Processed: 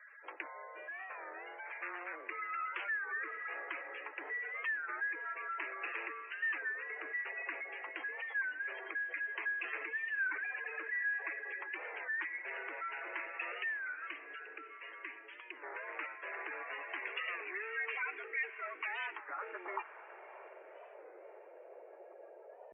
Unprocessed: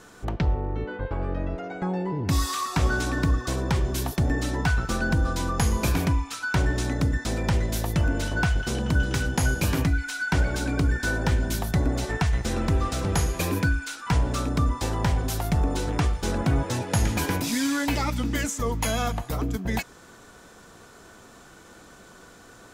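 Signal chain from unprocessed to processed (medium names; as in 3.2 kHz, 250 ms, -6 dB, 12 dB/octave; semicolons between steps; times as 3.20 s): 1.65–2.16 s: self-modulated delay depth 0.66 ms; mistuned SSB +170 Hz 160–2700 Hz; 14.07–15.65 s: peaking EQ 900 Hz -13.5 dB 2.3 oct; valve stage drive 28 dB, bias 0.35; band-pass sweep 2.1 kHz -> 560 Hz, 19.17–20.52 s; spectral gate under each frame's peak -15 dB strong; on a send: echo that smears into a reverb 611 ms, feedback 51%, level -14.5 dB; on the sum: warped record 33 1/3 rpm, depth 160 cents; trim +2.5 dB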